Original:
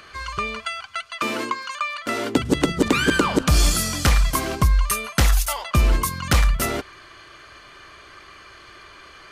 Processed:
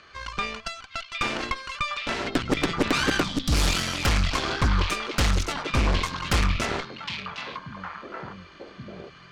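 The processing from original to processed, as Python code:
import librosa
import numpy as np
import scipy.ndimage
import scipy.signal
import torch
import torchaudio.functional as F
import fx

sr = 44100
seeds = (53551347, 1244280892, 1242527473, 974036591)

y = scipy.signal.sosfilt(scipy.signal.butter(4, 6300.0, 'lowpass', fs=sr, output='sos'), x)
y = fx.cheby_harmonics(y, sr, harmonics=(6,), levels_db=(-9,), full_scale_db=-8.0)
y = fx.echo_stepped(y, sr, ms=761, hz=3100.0, octaves=-1.4, feedback_pct=70, wet_db=-2.0)
y = fx.spec_box(y, sr, start_s=3.23, length_s=0.29, low_hz=320.0, high_hz=3000.0, gain_db=-12)
y = fx.doppler_dist(y, sr, depth_ms=0.18)
y = y * 10.0 ** (-6.5 / 20.0)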